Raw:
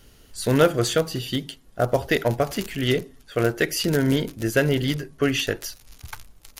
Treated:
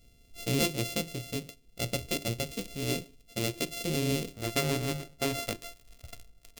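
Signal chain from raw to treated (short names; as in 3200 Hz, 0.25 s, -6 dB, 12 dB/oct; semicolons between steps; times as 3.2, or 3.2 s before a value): sample sorter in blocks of 64 samples; band shelf 1100 Hz -15.5 dB, from 4.33 s -8 dB; gain -7 dB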